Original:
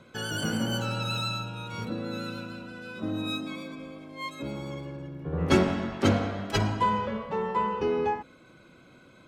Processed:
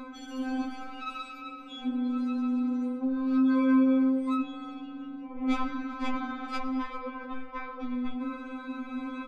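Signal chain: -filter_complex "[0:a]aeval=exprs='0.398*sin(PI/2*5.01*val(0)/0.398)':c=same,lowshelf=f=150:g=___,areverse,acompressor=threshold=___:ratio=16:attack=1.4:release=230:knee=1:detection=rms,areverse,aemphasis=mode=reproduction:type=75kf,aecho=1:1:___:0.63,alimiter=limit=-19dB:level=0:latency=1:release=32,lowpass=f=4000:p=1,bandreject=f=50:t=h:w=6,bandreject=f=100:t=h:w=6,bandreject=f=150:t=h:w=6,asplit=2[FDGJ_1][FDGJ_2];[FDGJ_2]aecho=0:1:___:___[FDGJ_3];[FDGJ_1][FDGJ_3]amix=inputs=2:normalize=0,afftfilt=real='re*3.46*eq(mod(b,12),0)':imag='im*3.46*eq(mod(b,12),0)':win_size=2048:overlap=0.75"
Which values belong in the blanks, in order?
6, -21dB, 6.9, 394, 0.1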